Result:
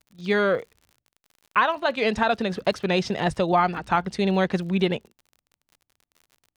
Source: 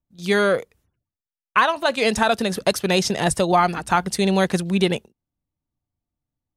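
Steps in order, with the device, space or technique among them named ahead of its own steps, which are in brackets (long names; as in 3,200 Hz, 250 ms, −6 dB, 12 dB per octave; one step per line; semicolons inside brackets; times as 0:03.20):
lo-fi chain (low-pass filter 3,600 Hz 12 dB per octave; tape wow and flutter 27 cents; surface crackle 52 per second −38 dBFS)
level −3 dB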